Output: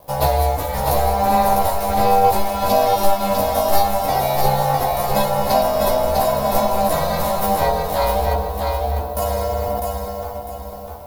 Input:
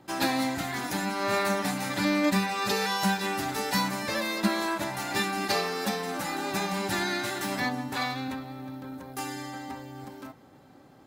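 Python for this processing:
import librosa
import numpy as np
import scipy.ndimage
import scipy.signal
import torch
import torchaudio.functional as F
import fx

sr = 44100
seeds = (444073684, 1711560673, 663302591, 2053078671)

p1 = fx.rider(x, sr, range_db=4, speed_s=0.5)
p2 = x + (p1 * librosa.db_to_amplitude(1.5))
p3 = fx.quant_dither(p2, sr, seeds[0], bits=8, dither='none')
p4 = p3 * np.sin(2.0 * np.pi * 190.0 * np.arange(len(p3)) / sr)
p5 = fx.low_shelf(p4, sr, hz=160.0, db=6.0)
p6 = fx.doubler(p5, sr, ms=14.0, db=-3)
p7 = p6 + fx.echo_feedback(p6, sr, ms=651, feedback_pct=34, wet_db=-4, dry=0)
p8 = np.sign(p7) * np.maximum(np.abs(p7) - 10.0 ** (-55.0 / 20.0), 0.0)
p9 = fx.curve_eq(p8, sr, hz=(170.0, 260.0, 360.0, 690.0, 1600.0, 5100.0, 7700.0, 13000.0), db=(0, 6, -7, 13, -9, -3, -4, 10))
y = fx.env_flatten(p9, sr, amount_pct=70, at=(9.22, 9.8))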